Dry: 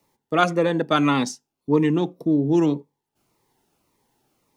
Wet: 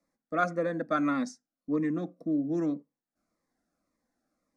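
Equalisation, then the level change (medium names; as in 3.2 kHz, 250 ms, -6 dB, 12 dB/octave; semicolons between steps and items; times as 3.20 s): distance through air 69 m; static phaser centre 600 Hz, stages 8; -6.5 dB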